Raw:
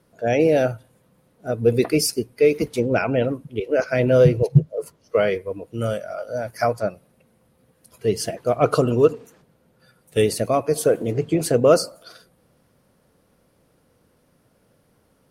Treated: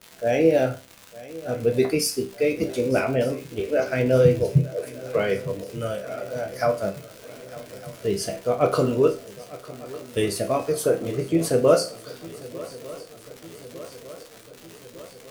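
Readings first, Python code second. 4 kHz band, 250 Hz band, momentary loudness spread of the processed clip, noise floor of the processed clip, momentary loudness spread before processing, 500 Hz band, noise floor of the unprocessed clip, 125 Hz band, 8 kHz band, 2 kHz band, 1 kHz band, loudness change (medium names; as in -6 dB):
-1.5 dB, -2.0 dB, 21 LU, -47 dBFS, 13 LU, -2.5 dB, -63 dBFS, -3.5 dB, -2.0 dB, -2.5 dB, -3.0 dB, -2.5 dB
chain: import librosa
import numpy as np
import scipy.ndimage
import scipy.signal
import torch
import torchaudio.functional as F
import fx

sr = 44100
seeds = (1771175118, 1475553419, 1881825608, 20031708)

y = fx.dmg_crackle(x, sr, seeds[0], per_s=210.0, level_db=-28.0)
y = fx.resonator_bank(y, sr, root=36, chord='major', decay_s=0.31)
y = fx.echo_swing(y, sr, ms=1204, ratio=3, feedback_pct=64, wet_db=-19)
y = y * 10.0 ** (8.5 / 20.0)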